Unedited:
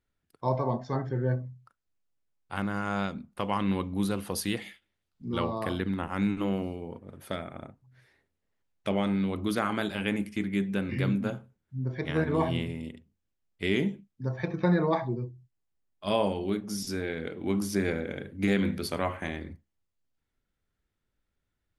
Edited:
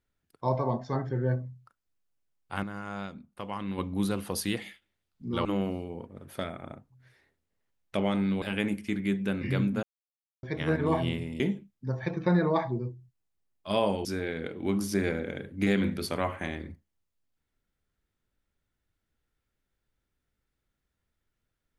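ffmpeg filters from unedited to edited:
ffmpeg -i in.wav -filter_complex "[0:a]asplit=9[link_01][link_02][link_03][link_04][link_05][link_06][link_07][link_08][link_09];[link_01]atrim=end=2.632[link_10];[link_02]atrim=start=2.628:end=3.782,asetpts=PTS-STARTPTS,volume=-7dB[link_11];[link_03]atrim=start=3.778:end=5.452[link_12];[link_04]atrim=start=6.368:end=9.342[link_13];[link_05]atrim=start=9.898:end=11.31,asetpts=PTS-STARTPTS,afade=type=out:start_time=1.408:duration=0.004:curve=hsin[link_14];[link_06]atrim=start=11.31:end=11.91,asetpts=PTS-STARTPTS,volume=0[link_15];[link_07]atrim=start=11.91:end=12.882,asetpts=PTS-STARTPTS,afade=type=in:duration=0.004:curve=hsin[link_16];[link_08]atrim=start=13.768:end=16.422[link_17];[link_09]atrim=start=16.858[link_18];[link_10][link_11]acrossfade=duration=0.004:curve1=hsin:curve2=hsin[link_19];[link_19][link_12]acrossfade=duration=0.004:curve1=hsin:curve2=hsin[link_20];[link_20][link_13]acrossfade=duration=0.004:curve1=hsin:curve2=hsin[link_21];[link_14][link_15][link_16]concat=n=3:v=0:a=1[link_22];[link_21][link_22]acrossfade=duration=0.004:curve1=hsin:curve2=hsin[link_23];[link_23][link_17]acrossfade=duration=0.004:curve1=hsin:curve2=hsin[link_24];[link_24][link_18]acrossfade=duration=0.004:curve1=hsin:curve2=hsin" out.wav

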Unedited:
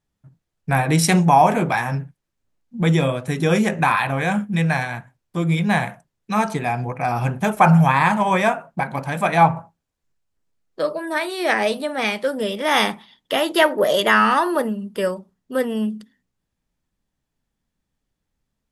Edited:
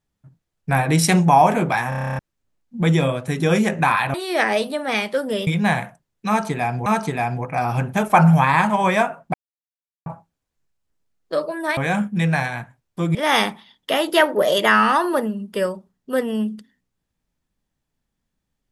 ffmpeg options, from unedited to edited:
ffmpeg -i in.wav -filter_complex "[0:a]asplit=18[link_01][link_02][link_03][link_04][link_05][link_06][link_07][link_08][link_09][link_10][link_11][link_12][link_13][link_14][link_15][link_16][link_17][link_18];[link_01]atrim=end=1.922[link_19];[link_02]atrim=start=1.888:end=1.922[link_20];[link_03]atrim=start=1.888:end=1.922[link_21];[link_04]atrim=start=1.888:end=1.922[link_22];[link_05]atrim=start=1.888:end=1.922[link_23];[link_06]atrim=start=1.888:end=1.922[link_24];[link_07]atrim=start=1.888:end=1.922[link_25];[link_08]atrim=start=1.888:end=1.922[link_26];[link_09]atrim=start=1.888:end=1.922[link_27];[link_10]atrim=start=1.888:end=1.922[link_28];[link_11]atrim=start=2.188:end=4.142[link_29];[link_12]atrim=start=11.238:end=12.572[link_30];[link_13]atrim=start=5.518:end=6.912[link_31];[link_14]atrim=start=6.328:end=8.81,asetpts=PTS-STARTPTS,afade=type=out:start_time=2.478:duration=0.004:curve=hsin[link_32];[link_15]atrim=start=8.81:end=9.53,asetpts=PTS-STARTPTS,volume=0[link_33];[link_16]atrim=start=9.53:end=11.242,asetpts=PTS-STARTPTS,afade=type=in:duration=0.004:curve=hsin[link_34];[link_17]atrim=start=4.138:end=5.522[link_35];[link_18]atrim=start=12.568[link_36];[link_19][link_20]acrossfade=duration=0.004:curve1=hsin:curve2=hsin[link_37];[link_37][link_21]acrossfade=duration=0.004:curve1=hsin:curve2=hsin[link_38];[link_38][link_22]acrossfade=duration=0.004:curve1=hsin:curve2=hsin[link_39];[link_39][link_23]acrossfade=duration=0.004:curve1=hsin:curve2=hsin[link_40];[link_40][link_24]acrossfade=duration=0.004:curve1=hsin:curve2=hsin[link_41];[link_41][link_25]acrossfade=duration=0.004:curve1=hsin:curve2=hsin[link_42];[link_42][link_26]acrossfade=duration=0.004:curve1=hsin:curve2=hsin[link_43];[link_43][link_27]acrossfade=duration=0.004:curve1=hsin:curve2=hsin[link_44];[link_44][link_28]acrossfade=duration=0.004:curve1=hsin:curve2=hsin[link_45];[link_45][link_29]acrossfade=duration=0.004:curve1=hsin:curve2=hsin[link_46];[link_46][link_30]acrossfade=duration=0.004:curve1=hsin:curve2=hsin[link_47];[link_47][link_31]acrossfade=duration=0.004:curve1=hsin:curve2=hsin[link_48];[link_32][link_33][link_34]concat=n=3:v=0:a=1[link_49];[link_48][link_49]acrossfade=duration=0.004:curve1=hsin:curve2=hsin[link_50];[link_50][link_35]acrossfade=duration=0.004:curve1=hsin:curve2=hsin[link_51];[link_51][link_36]acrossfade=duration=0.004:curve1=hsin:curve2=hsin" out.wav

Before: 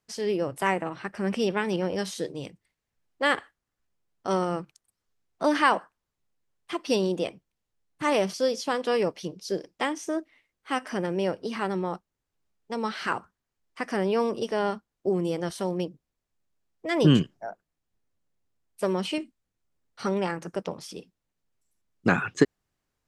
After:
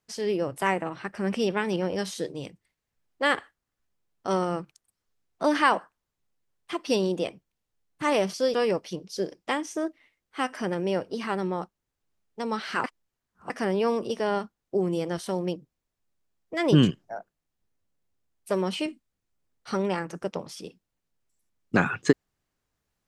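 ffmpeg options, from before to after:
ffmpeg -i in.wav -filter_complex "[0:a]asplit=4[link_01][link_02][link_03][link_04];[link_01]atrim=end=8.542[link_05];[link_02]atrim=start=8.858:end=13.162[link_06];[link_03]atrim=start=13.158:end=13.822,asetpts=PTS-STARTPTS,areverse[link_07];[link_04]atrim=start=13.818[link_08];[link_05][link_06]acrossfade=duration=0.004:curve1=hsin:curve2=hsin[link_09];[link_09][link_07]acrossfade=duration=0.004:curve1=hsin:curve2=hsin[link_10];[link_10][link_08]acrossfade=duration=0.004:curve1=hsin:curve2=hsin" out.wav

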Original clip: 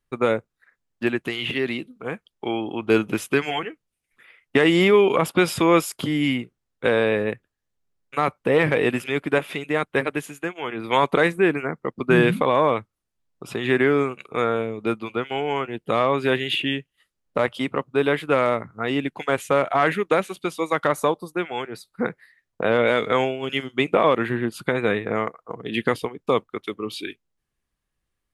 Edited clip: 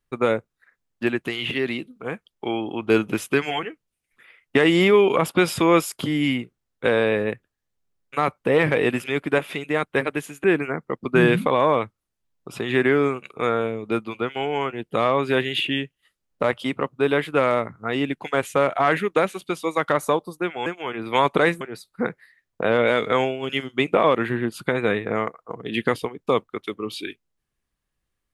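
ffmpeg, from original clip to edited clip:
ffmpeg -i in.wav -filter_complex "[0:a]asplit=4[link_01][link_02][link_03][link_04];[link_01]atrim=end=10.442[link_05];[link_02]atrim=start=11.388:end=21.612[link_06];[link_03]atrim=start=10.438:end=11.392[link_07];[link_04]atrim=start=21.608[link_08];[link_05][link_06]acrossfade=duration=0.004:curve1=hsin:curve2=hsin[link_09];[link_09][link_07]acrossfade=duration=0.004:curve1=hsin:curve2=hsin[link_10];[link_10][link_08]acrossfade=duration=0.004:curve1=hsin:curve2=hsin" out.wav

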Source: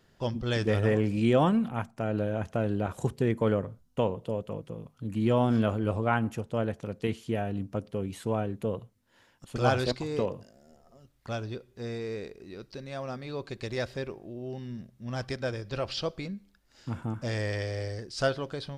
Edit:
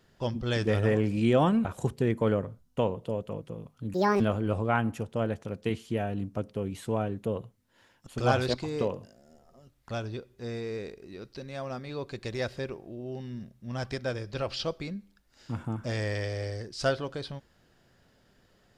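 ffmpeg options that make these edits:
ffmpeg -i in.wav -filter_complex "[0:a]asplit=4[link_01][link_02][link_03][link_04];[link_01]atrim=end=1.652[link_05];[link_02]atrim=start=2.848:end=5.144[link_06];[link_03]atrim=start=5.14:end=5.58,asetpts=PTS-STARTPTS,asetrate=74088,aresample=44100[link_07];[link_04]atrim=start=5.576[link_08];[link_05][link_06]acrossfade=duration=0.004:curve1=hsin:curve2=hsin[link_09];[link_09][link_07]acrossfade=duration=0.004:curve1=hsin:curve2=hsin[link_10];[link_10][link_08]acrossfade=duration=0.004:curve1=hsin:curve2=hsin" out.wav

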